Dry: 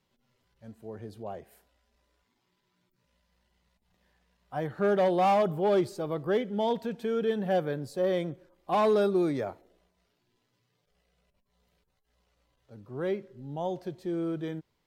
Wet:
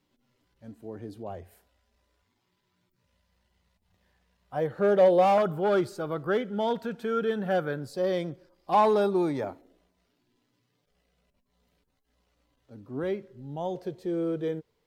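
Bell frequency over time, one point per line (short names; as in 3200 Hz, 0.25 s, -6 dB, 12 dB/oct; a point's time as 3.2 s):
bell +12 dB 0.31 oct
290 Hz
from 1.29 s 90 Hz
from 4.55 s 510 Hz
from 5.38 s 1400 Hz
from 7.93 s 4900 Hz
from 8.74 s 900 Hz
from 9.44 s 270 Hz
from 13.03 s 80 Hz
from 13.75 s 460 Hz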